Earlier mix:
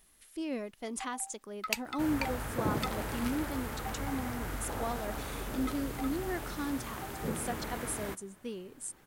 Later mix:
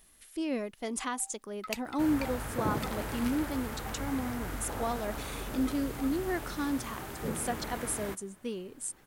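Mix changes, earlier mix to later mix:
speech +3.5 dB; first sound -5.0 dB

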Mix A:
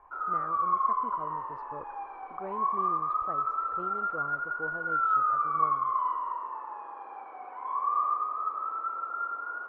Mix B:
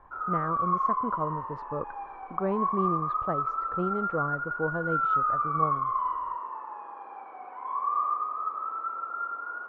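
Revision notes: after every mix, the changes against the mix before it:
speech +9.5 dB; master: add peaking EQ 180 Hz +7.5 dB 0.65 oct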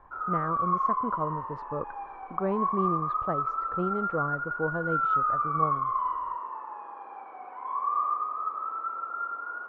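no change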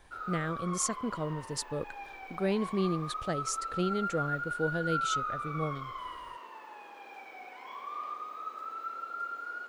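speech: remove distance through air 120 m; master: remove resonant low-pass 1.1 kHz, resonance Q 5.1

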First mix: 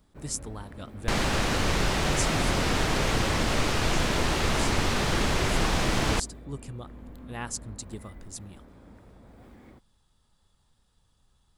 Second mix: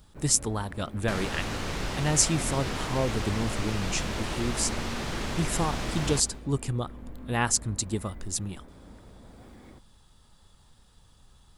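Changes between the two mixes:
speech +10.0 dB; second sound -8.5 dB; reverb: on, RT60 1.1 s

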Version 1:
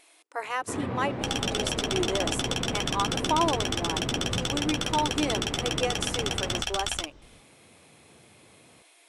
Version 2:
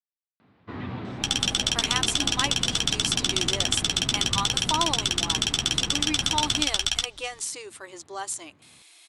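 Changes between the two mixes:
speech: entry +1.40 s; first sound: add treble shelf 3.8 kHz -9.5 dB; master: add graphic EQ 500/4000/8000 Hz -9/+8/+6 dB

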